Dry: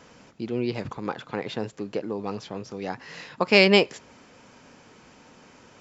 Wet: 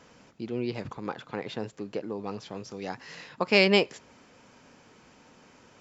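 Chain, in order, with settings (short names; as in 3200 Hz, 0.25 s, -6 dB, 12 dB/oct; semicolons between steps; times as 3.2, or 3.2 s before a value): 2.46–3.15 high shelf 4200 Hz +7 dB; gain -4 dB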